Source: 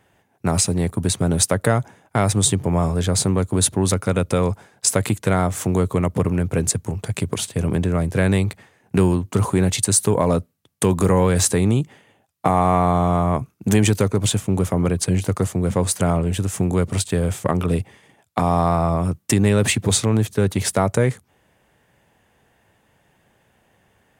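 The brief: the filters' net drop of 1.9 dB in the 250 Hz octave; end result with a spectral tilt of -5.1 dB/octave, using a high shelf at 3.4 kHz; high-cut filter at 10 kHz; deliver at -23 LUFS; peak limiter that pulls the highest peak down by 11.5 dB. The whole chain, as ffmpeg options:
-af "lowpass=10000,equalizer=f=250:t=o:g=-3,highshelf=f=3400:g=3,volume=1.12,alimiter=limit=0.237:level=0:latency=1"

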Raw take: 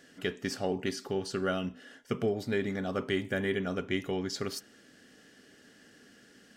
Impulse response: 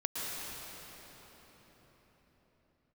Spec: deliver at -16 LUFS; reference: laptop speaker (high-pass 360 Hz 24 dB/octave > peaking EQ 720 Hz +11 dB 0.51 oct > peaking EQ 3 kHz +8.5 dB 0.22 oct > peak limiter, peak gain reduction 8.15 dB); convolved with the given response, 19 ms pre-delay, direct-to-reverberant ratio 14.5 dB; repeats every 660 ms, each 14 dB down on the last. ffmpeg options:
-filter_complex "[0:a]aecho=1:1:660|1320:0.2|0.0399,asplit=2[s0][s1];[1:a]atrim=start_sample=2205,adelay=19[s2];[s1][s2]afir=irnorm=-1:irlink=0,volume=0.1[s3];[s0][s3]amix=inputs=2:normalize=0,highpass=f=360:w=0.5412,highpass=f=360:w=1.3066,equalizer=f=720:t=o:w=0.51:g=11,equalizer=f=3000:t=o:w=0.22:g=8.5,volume=9.44,alimiter=limit=0.708:level=0:latency=1"

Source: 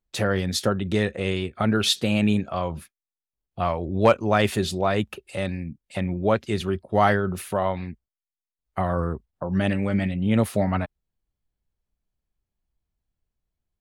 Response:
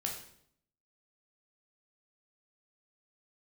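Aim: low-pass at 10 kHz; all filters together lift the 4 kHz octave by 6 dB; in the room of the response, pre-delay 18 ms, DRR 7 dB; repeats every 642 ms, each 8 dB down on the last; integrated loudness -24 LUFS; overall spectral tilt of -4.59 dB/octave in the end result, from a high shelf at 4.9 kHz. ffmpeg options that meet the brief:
-filter_complex "[0:a]lowpass=10000,equalizer=f=4000:t=o:g=3.5,highshelf=f=4900:g=8.5,aecho=1:1:642|1284|1926|2568|3210:0.398|0.159|0.0637|0.0255|0.0102,asplit=2[s0][s1];[1:a]atrim=start_sample=2205,adelay=18[s2];[s1][s2]afir=irnorm=-1:irlink=0,volume=0.376[s3];[s0][s3]amix=inputs=2:normalize=0,volume=0.841"

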